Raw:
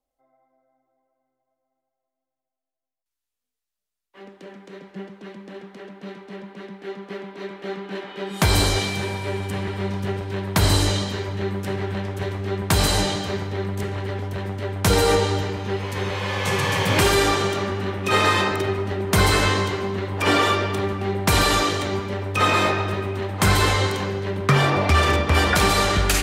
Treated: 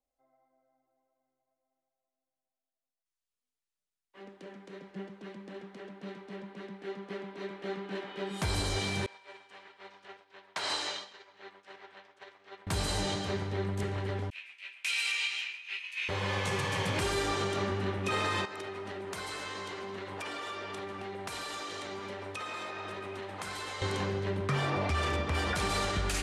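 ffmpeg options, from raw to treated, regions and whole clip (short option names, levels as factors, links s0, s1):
-filter_complex "[0:a]asettb=1/sr,asplit=3[s0][s1][s2];[s0]atrim=end=9.064[s3];[s1]atrim=start=9.06:end=12.67,asetpts=PTS-STARTPTS,afade=t=in:d=0.004:c=qsin,afade=t=out:st=3.606:d=0.004:c=qsin,agate=range=0.0224:threshold=0.112:ratio=3:release=100:detection=peak,highpass=750,lowpass=5600[s4];[s2]atrim=start=12.666[s5];[s3][s4]acrossfade=d=0.004:c1=hsin:c2=qsin[s6];[s6][s5]acrossfade=d=0.004:c1=qsin:c2=hsin,asettb=1/sr,asplit=3[s7][s8][s9];[s7]atrim=end=14.304[s10];[s8]atrim=start=14.3:end=16.09,asetpts=PTS-STARTPTS,afade=t=in:d=0.004:c=qsin,afade=t=out:st=1.786:d=0.004:c=qsin,agate=range=0.0224:threshold=0.0891:ratio=3:release=100:detection=peak,highpass=f=2500:t=q:w=11,asplit=2[s11][s12];[s12]adelay=16,volume=0.447[s13];[s11][s13]amix=inputs=2:normalize=0,atrim=end_sample=78939[s14];[s9]atrim=start=16.086[s15];[s10][s14]acrossfade=d=0.004:c1=hsin:c2=qsin[s16];[s16][s15]acrossfade=d=0.004:c1=qsin:c2=hsin,asettb=1/sr,asplit=3[s17][s18][s19];[s17]atrim=end=18.454[s20];[s18]atrim=start=18.45:end=23.82,asetpts=PTS-STARTPTS,afade=t=in:d=0.004:c=qsin,afade=t=out:st=5.366:d=0.004:c=qsin,highpass=f=470:p=1,acompressor=threshold=0.0355:ratio=10:attack=3.2:release=140:knee=1:detection=peak[s21];[s19]atrim=start=23.816[s22];[s20][s21]acrossfade=d=0.004:c1=hsin:c2=qsin[s23];[s23][s22]acrossfade=d=0.004:c1=qsin:c2=hsin,lowpass=f=11000:w=0.5412,lowpass=f=11000:w=1.3066,alimiter=limit=0.168:level=0:latency=1:release=170,volume=0.473"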